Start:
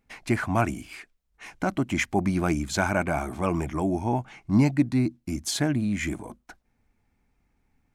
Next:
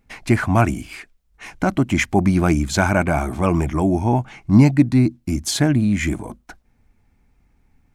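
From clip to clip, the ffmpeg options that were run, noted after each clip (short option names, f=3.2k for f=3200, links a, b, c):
-af "lowshelf=f=160:g=6,volume=6dB"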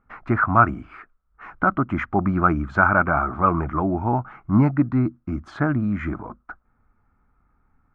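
-af "lowpass=f=1.3k:t=q:w=8.2,volume=-5.5dB"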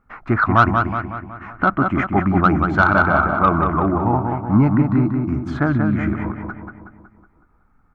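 -filter_complex "[0:a]acontrast=30,asplit=2[a][b];[b]adelay=185,lowpass=f=2.9k:p=1,volume=-4.5dB,asplit=2[c][d];[d]adelay=185,lowpass=f=2.9k:p=1,volume=0.54,asplit=2[e][f];[f]adelay=185,lowpass=f=2.9k:p=1,volume=0.54,asplit=2[g][h];[h]adelay=185,lowpass=f=2.9k:p=1,volume=0.54,asplit=2[i][j];[j]adelay=185,lowpass=f=2.9k:p=1,volume=0.54,asplit=2[k][l];[l]adelay=185,lowpass=f=2.9k:p=1,volume=0.54,asplit=2[m][n];[n]adelay=185,lowpass=f=2.9k:p=1,volume=0.54[o];[c][e][g][i][k][m][o]amix=inputs=7:normalize=0[p];[a][p]amix=inputs=2:normalize=0,volume=-2dB"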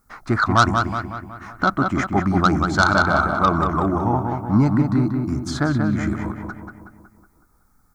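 -af "aexciter=amount=13:drive=3.9:freq=4k,volume=-2dB"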